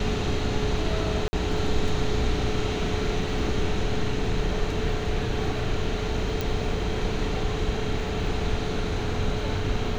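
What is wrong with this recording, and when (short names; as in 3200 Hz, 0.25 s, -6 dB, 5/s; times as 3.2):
1.28–1.33 gap 50 ms
6.41 pop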